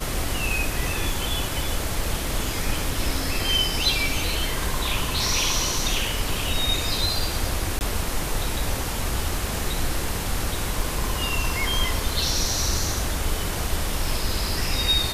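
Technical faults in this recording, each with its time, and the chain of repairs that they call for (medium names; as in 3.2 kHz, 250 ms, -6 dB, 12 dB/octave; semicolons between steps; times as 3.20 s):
7.79–7.81 s: dropout 19 ms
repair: interpolate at 7.79 s, 19 ms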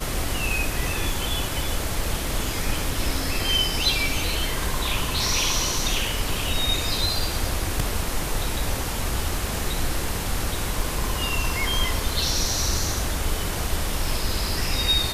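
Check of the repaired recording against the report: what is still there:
nothing left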